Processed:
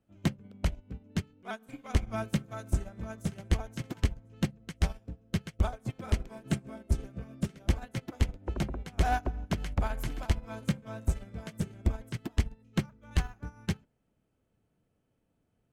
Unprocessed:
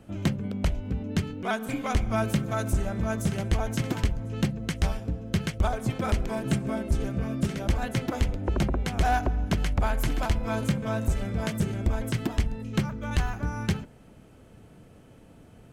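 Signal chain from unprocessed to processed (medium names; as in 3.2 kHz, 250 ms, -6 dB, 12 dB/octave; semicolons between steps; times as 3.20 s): upward expansion 2.5:1, over -35 dBFS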